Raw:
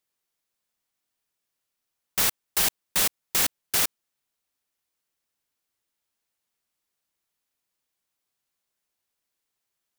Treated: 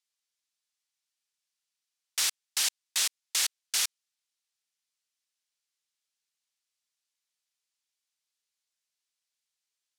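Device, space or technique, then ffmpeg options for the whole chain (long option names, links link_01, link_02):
piezo pickup straight into a mixer: -af "lowpass=5500,aderivative,volume=6dB"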